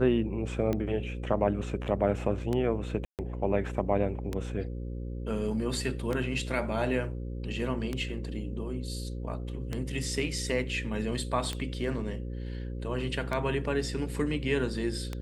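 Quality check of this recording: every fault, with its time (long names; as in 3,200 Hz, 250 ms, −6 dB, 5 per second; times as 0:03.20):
mains buzz 60 Hz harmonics 9 −36 dBFS
scratch tick 33 1/3 rpm −18 dBFS
0:03.05–0:03.19: drop-out 138 ms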